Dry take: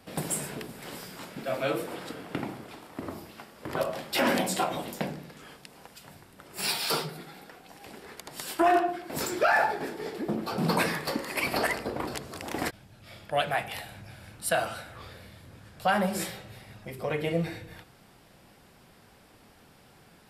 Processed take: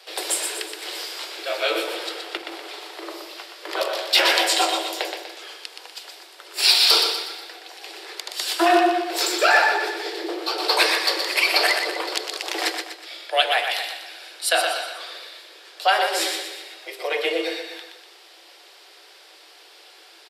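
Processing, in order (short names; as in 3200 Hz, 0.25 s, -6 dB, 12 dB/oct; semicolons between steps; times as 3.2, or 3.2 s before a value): Chebyshev high-pass 320 Hz, order 10; bell 4100 Hz +13.5 dB 1.6 oct; 2.37–2.96 negative-ratio compressor -41 dBFS, ratio -1; feedback echo 0.122 s, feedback 44%, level -6 dB; on a send at -14 dB: reverb RT60 0.35 s, pre-delay 3 ms; on the sum: gain +3.5 dB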